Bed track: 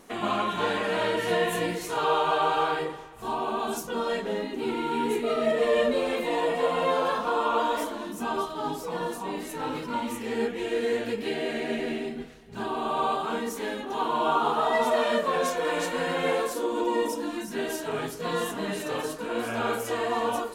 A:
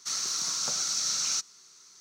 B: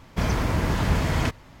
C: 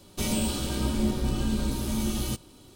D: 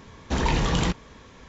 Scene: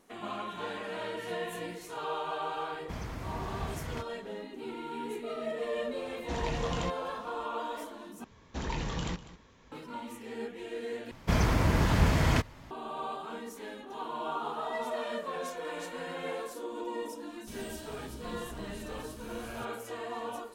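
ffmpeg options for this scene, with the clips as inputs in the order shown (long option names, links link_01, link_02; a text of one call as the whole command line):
ffmpeg -i bed.wav -i cue0.wav -i cue1.wav -i cue2.wav -i cue3.wav -filter_complex "[2:a]asplit=2[link_01][link_02];[4:a]asplit=2[link_03][link_04];[0:a]volume=-11dB[link_05];[link_04]aecho=1:1:198:0.158[link_06];[link_05]asplit=3[link_07][link_08][link_09];[link_07]atrim=end=8.244[link_10];[link_06]atrim=end=1.48,asetpts=PTS-STARTPTS,volume=-11.5dB[link_11];[link_08]atrim=start=9.716:end=11.114[link_12];[link_02]atrim=end=1.6,asetpts=PTS-STARTPTS,volume=-2dB[link_13];[link_09]atrim=start=12.706[link_14];[link_01]atrim=end=1.6,asetpts=PTS-STARTPTS,volume=-15.5dB,afade=type=in:duration=0.004:curve=hsin,afade=type=out:start_time=1.596:duration=0.004:curve=hsin,adelay=2720[link_15];[link_03]atrim=end=1.48,asetpts=PTS-STARTPTS,volume=-11.5dB,afade=type=in:duration=0.004:curve=hsin,afade=type=out:start_time=1.476:duration=0.004:curve=hsin,adelay=5980[link_16];[3:a]atrim=end=2.75,asetpts=PTS-STARTPTS,volume=-18dB,afade=type=in:duration=0.004:curve=hsin,afade=type=out:start_time=2.746:duration=0.004:curve=hsin,adelay=17290[link_17];[link_10][link_11]acrossfade=duration=0.004:curve1=hsin:curve2=hsin[link_18];[link_18][link_12]acrossfade=duration=0.004:curve1=hsin:curve2=hsin[link_19];[link_19][link_13]acrossfade=duration=0.004:curve1=hsin:curve2=hsin[link_20];[link_20][link_14]acrossfade=duration=0.004:curve1=hsin:curve2=hsin[link_21];[link_21][link_15][link_16][link_17]amix=inputs=4:normalize=0" out.wav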